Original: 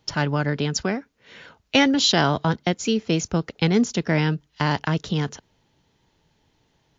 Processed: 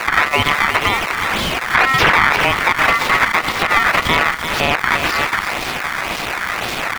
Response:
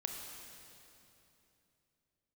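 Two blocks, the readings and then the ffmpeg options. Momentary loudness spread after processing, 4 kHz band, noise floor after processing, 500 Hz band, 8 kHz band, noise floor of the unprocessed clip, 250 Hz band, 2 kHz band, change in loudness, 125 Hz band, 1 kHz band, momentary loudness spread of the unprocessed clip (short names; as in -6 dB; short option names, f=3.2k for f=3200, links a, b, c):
9 LU, +6.0 dB, -24 dBFS, +3.0 dB, n/a, -67 dBFS, -5.0 dB, +15.5 dB, +7.5 dB, -4.0 dB, +13.5 dB, 9 LU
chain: -filter_complex "[0:a]aeval=exprs='val(0)+0.5*0.0473*sgn(val(0))':c=same,highpass=530,acrusher=samples=22:mix=1:aa=0.000001:lfo=1:lforange=35.2:lforate=1.9,aeval=exprs='val(0)*sin(2*PI*1600*n/s)':c=same,asplit=2[a][b];[b]aecho=0:1:343:0.251[c];[a][c]amix=inputs=2:normalize=0,acrossover=split=3900[d][e];[e]acompressor=threshold=-43dB:ratio=4:attack=1:release=60[f];[d][f]amix=inputs=2:normalize=0,alimiter=level_in=17.5dB:limit=-1dB:release=50:level=0:latency=1,volume=-1dB"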